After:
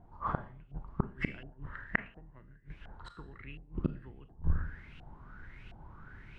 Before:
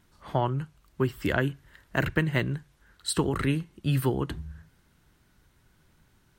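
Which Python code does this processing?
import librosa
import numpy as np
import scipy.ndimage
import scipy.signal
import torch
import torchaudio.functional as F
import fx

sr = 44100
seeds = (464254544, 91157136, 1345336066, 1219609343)

y = fx.octave_divider(x, sr, octaves=2, level_db=0.0)
y = y + 10.0 ** (-19.0 / 20.0) * np.pad(y, (int(146 * sr / 1000.0), 0))[:len(y)]
y = fx.gate_flip(y, sr, shuts_db=-24.0, range_db=-35)
y = fx.low_shelf(y, sr, hz=210.0, db=7.5)
y = fx.rev_schroeder(y, sr, rt60_s=0.45, comb_ms=27, drr_db=11.5)
y = fx.filter_lfo_lowpass(y, sr, shape='saw_up', hz=1.4, low_hz=700.0, high_hz=2900.0, q=6.9)
y = fx.high_shelf(y, sr, hz=4500.0, db=8.0)
y = fx.rider(y, sr, range_db=3, speed_s=0.5)
y = y * librosa.db_to_amplitude(2.5)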